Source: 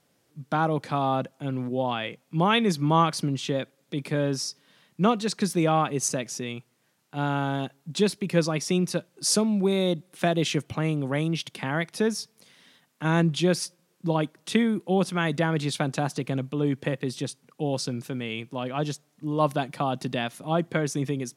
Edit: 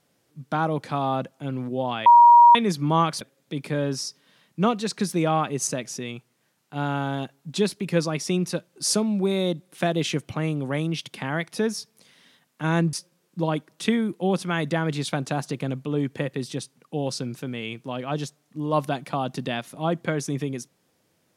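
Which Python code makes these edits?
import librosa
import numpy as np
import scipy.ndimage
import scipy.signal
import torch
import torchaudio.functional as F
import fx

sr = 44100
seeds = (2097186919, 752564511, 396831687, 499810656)

y = fx.edit(x, sr, fx.bleep(start_s=2.06, length_s=0.49, hz=951.0, db=-8.0),
    fx.cut(start_s=3.21, length_s=0.41),
    fx.cut(start_s=13.34, length_s=0.26), tone=tone)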